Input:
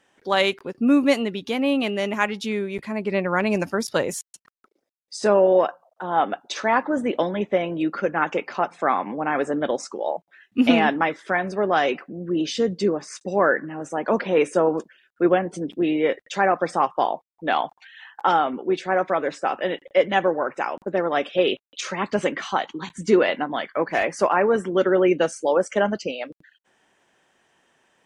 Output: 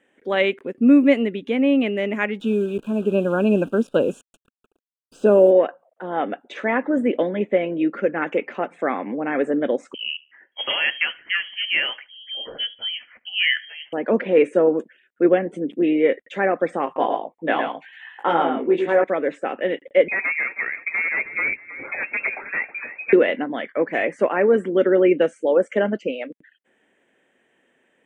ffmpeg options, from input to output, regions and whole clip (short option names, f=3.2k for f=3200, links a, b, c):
-filter_complex "[0:a]asettb=1/sr,asplit=3[a][b][c];[a]atrim=end=2.404[d];[b]atrim=start=2.4:end=5.51,asetpts=PTS-STARTPTS,afade=t=in:d=0.004:c=qsin,afade=t=out:st=3.106:d=0.004:c=qsin,lowshelf=f=410:g=4.5,acrusher=bits=7:dc=4:mix=0:aa=0.000001,asuperstop=centerf=2000:order=12:qfactor=2.3[e];[c]atrim=start=5.506[f];[d][e]acrossfade=d=0.004:c1=hsin:c2=qsin[g];[g][f]acrossfade=d=0.004:c1=qsin:c2=hsin,asettb=1/sr,asplit=3[h][i][j];[h]atrim=end=9.944[k];[i]atrim=start=9.94:end=13.93,asetpts=PTS-STARTPTS,afade=t=in:d=0.004:c=qsin,afade=t=out:st=3.986:d=0.004:c=qsin,highpass=390,lowpass=f=3k:t=q:w=0.5098,lowpass=f=3k:t=q:w=0.6013,lowpass=f=3k:t=q:w=0.9,lowpass=f=3k:t=q:w=2.563,afreqshift=-3500,aecho=1:1:74|148:0.0708|0.0198,atrim=end_sample=175959[l];[j]atrim=start=13.926[m];[k][l]acrossfade=d=0.004:c1=hsin:c2=qsin[n];[n][m]acrossfade=d=0.004:c1=qsin:c2=hsin,asettb=1/sr,asplit=3[o][p][q];[o]atrim=end=16.854[r];[p]atrim=start=16.85:end=19.04,asetpts=PTS-STARTPTS,afade=t=in:d=0.004:c=qsin,afade=t=out:st=2.186:d=0.004:c=qsin,equalizer=f=1k:t=o:w=0.34:g=5,asplit=2[s][t];[t]adelay=18,volume=-3dB[u];[s][u]amix=inputs=2:normalize=0,atrim=end_sample=96579,aecho=1:1:110:0.531,atrim=end_sample=96579[v];[q]atrim=start=19.036[w];[r][v]acrossfade=d=0.004:c1=hsin:c2=qsin[x];[x][w]acrossfade=d=0.004:c1=qsin:c2=hsin,asettb=1/sr,asplit=3[y][z][aa];[y]atrim=end=20.084[ab];[z]atrim=start=20.08:end=23.13,asetpts=PTS-STARTPTS,afade=t=in:d=0.004:c=qsin,afade=t=out:st=3.046:d=0.004:c=qsin,aeval=exprs='0.133*(abs(mod(val(0)/0.133+3,4)-2)-1)':c=same,asplit=5[ac][ad][ae][af][ag];[ad]adelay=318,afreqshift=37,volume=-14dB[ah];[ae]adelay=636,afreqshift=74,volume=-22.6dB[ai];[af]adelay=954,afreqshift=111,volume=-31.3dB[aj];[ag]adelay=1272,afreqshift=148,volume=-39.9dB[ak];[ac][ah][ai][aj][ak]amix=inputs=5:normalize=0,atrim=end_sample=134505,lowpass=f=2.3k:t=q:w=0.5098,lowpass=f=2.3k:t=q:w=0.6013,lowpass=f=2.3k:t=q:w=0.9,lowpass=f=2.3k:t=q:w=2.563,afreqshift=-2700[al];[aa]atrim=start=23.126[am];[ab][al]acrossfade=d=0.004:c1=hsin:c2=qsin[an];[an][am]acrossfade=d=0.004:c1=qsin:c2=hsin,highshelf=f=4.2k:t=q:w=3:g=-6.5,acrossover=split=5400[ao][ap];[ap]acompressor=threshold=-56dB:ratio=4:attack=1:release=60[aq];[ao][aq]amix=inputs=2:normalize=0,equalizer=f=250:t=o:w=1:g=11,equalizer=f=500:t=o:w=1:g=10,equalizer=f=1k:t=o:w=1:g=-4,equalizer=f=2k:t=o:w=1:g=10,equalizer=f=4k:t=o:w=1:g=-9,equalizer=f=8k:t=o:w=1:g=12,volume=-8dB"